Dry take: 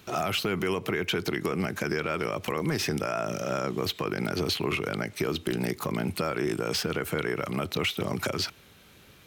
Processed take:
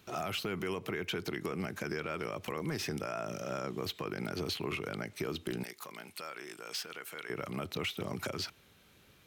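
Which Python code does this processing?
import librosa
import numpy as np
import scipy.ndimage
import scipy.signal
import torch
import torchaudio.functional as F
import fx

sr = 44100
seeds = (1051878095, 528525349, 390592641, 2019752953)

y = fx.highpass(x, sr, hz=1500.0, slope=6, at=(5.63, 7.3))
y = F.gain(torch.from_numpy(y), -8.0).numpy()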